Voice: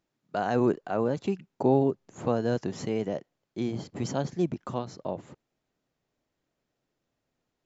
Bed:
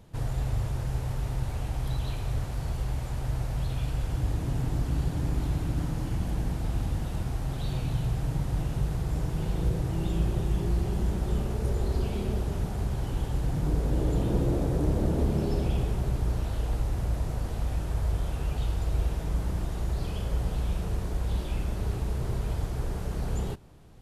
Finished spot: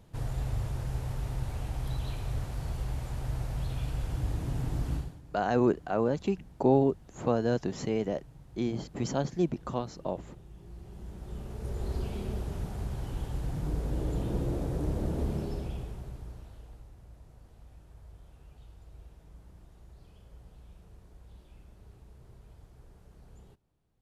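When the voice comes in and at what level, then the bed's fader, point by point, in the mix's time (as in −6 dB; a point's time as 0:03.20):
5.00 s, −0.5 dB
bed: 0:04.95 −3.5 dB
0:05.22 −23 dB
0:10.53 −23 dB
0:11.90 −5.5 dB
0:15.32 −5.5 dB
0:16.96 −23.5 dB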